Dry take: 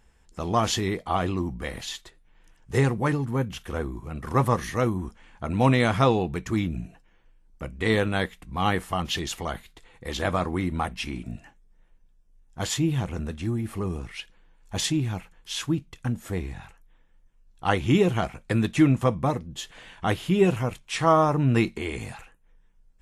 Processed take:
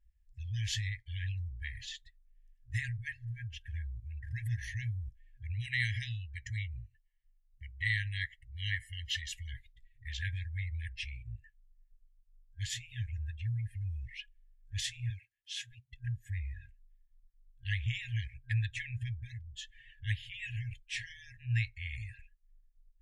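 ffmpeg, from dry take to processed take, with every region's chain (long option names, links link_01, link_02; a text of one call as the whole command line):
ffmpeg -i in.wav -filter_complex "[0:a]asettb=1/sr,asplit=3[link_01][link_02][link_03];[link_01]atrim=end=5.534[link_04];[link_02]atrim=start=5.53:end=9.33,asetpts=PTS-STARTPTS,afade=type=in:duration=0.004:curve=qsin,afade=type=out:start_time=3.796:duration=0.004:curve=qsin,lowshelf=frequency=150:gain=-9,aecho=1:1:1:0.57,atrim=end_sample=167580,asoftclip=type=hard:threshold=-11dB[link_05];[link_03]atrim=start=9.326[link_06];[link_04][link_05]acrossfade=duration=0.004:curve1=hsin:curve2=qsin[link_07];[link_07][link_06]acrossfade=duration=0.004:curve1=qsin:curve2=hsin,asettb=1/sr,asplit=3[link_08][link_09][link_10];[link_08]atrim=end=15.104[link_11];[link_09]atrim=start=15.1:end=15.92,asetpts=PTS-STARTPTS,afade=type=in:duration=0.004:curve=qsin,afade=type=out:start_time=0.816:duration=0.004:curve=qsin,highpass=140,asoftclip=type=hard:threshold=-18dB[link_12];[link_10]atrim=start=15.916[link_13];[link_11][link_12]acrossfade=duration=0.004:curve1=hsin:curve2=qsin[link_14];[link_14][link_13]acrossfade=duration=0.004:curve1=qsin:curve2=hsin,afftdn=noise_reduction=19:noise_floor=-44,afftfilt=real='re*(1-between(b*sr/4096,120,1600))':imag='im*(1-between(b*sr/4096,120,1600))':win_size=4096:overlap=0.75,highshelf=frequency=3100:gain=-8.5,volume=-3.5dB" out.wav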